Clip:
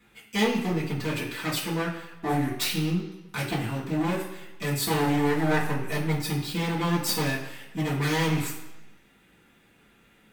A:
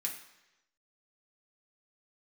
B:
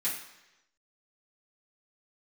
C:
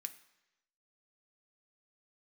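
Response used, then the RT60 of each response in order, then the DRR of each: B; 1.0 s, 1.0 s, 1.0 s; -1.5 dB, -10.0 dB, 8.0 dB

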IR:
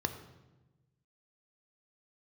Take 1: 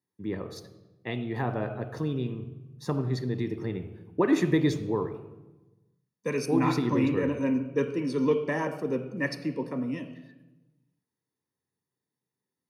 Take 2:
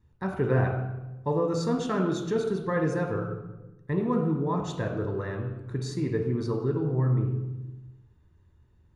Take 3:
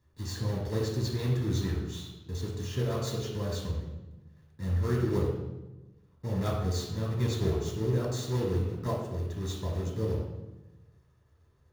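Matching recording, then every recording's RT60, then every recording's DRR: 1; 1.1 s, 1.1 s, 1.1 s; 7.5 dB, 1.5 dB, -3.5 dB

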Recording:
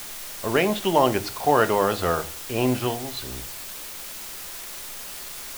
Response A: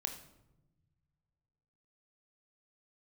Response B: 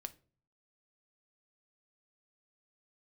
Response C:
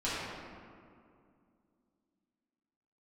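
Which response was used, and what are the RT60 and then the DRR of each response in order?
B; 0.95 s, 0.40 s, 2.3 s; 4.5 dB, 10.0 dB, -11.5 dB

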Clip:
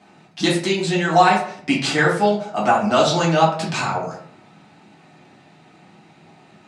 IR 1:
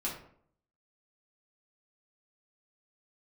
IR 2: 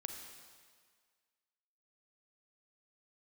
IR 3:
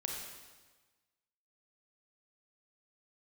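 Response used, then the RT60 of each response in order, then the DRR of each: 1; 0.60 s, 1.8 s, 1.3 s; -6.0 dB, 4.0 dB, -0.5 dB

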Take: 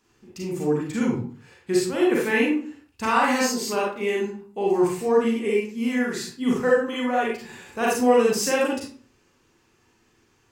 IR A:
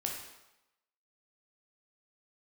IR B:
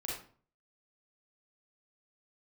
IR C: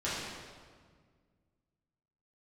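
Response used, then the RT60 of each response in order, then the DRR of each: B; 0.95 s, 0.45 s, 1.7 s; -0.5 dB, -5.0 dB, -11.0 dB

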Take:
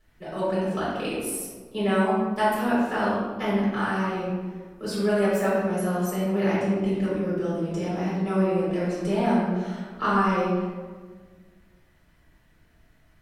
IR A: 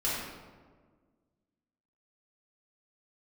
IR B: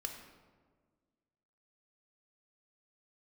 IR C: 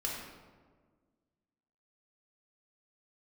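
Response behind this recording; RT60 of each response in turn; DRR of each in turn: A; 1.6 s, 1.6 s, 1.6 s; -9.5 dB, 3.0 dB, -4.0 dB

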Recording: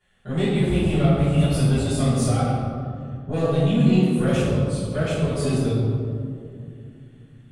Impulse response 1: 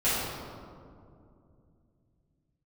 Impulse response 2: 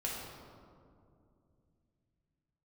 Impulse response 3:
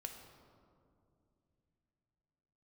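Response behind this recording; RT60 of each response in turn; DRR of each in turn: 1; 2.5 s, 2.5 s, 2.6 s; -13.5 dB, -4.5 dB, 3.5 dB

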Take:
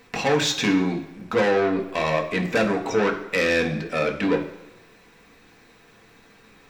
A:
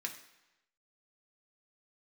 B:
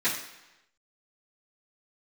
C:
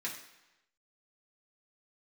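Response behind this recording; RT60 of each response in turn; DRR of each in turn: A; 1.0 s, 1.0 s, 1.0 s; 1.5 dB, -13.5 dB, -5.5 dB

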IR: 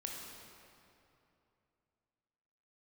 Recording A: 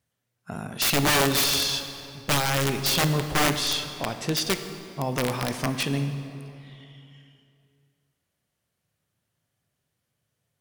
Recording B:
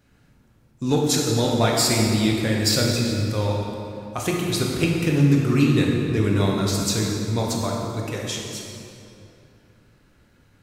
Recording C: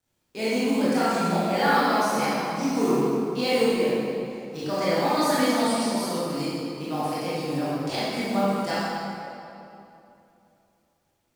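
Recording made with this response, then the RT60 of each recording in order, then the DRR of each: B; 2.8 s, 2.8 s, 2.8 s; 8.0 dB, -1.5 dB, -11.0 dB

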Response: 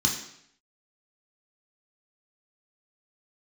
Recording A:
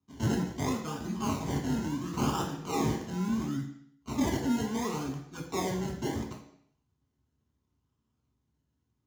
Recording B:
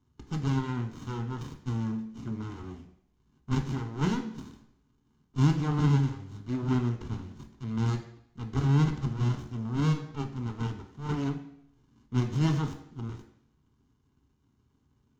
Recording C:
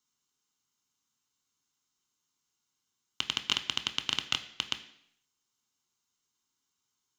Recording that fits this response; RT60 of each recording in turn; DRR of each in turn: A; 0.70 s, 0.70 s, 0.70 s; -1.0 dB, 4.0 dB, 8.0 dB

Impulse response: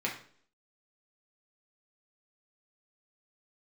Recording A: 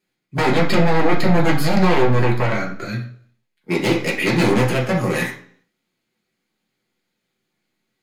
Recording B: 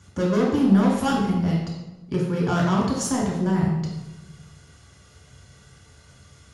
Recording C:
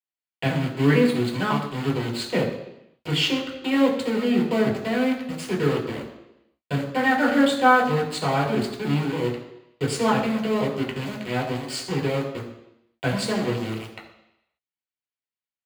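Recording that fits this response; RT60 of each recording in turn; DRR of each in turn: A; 0.55 s, 1.1 s, 0.85 s; -3.5 dB, -3.5 dB, -2.0 dB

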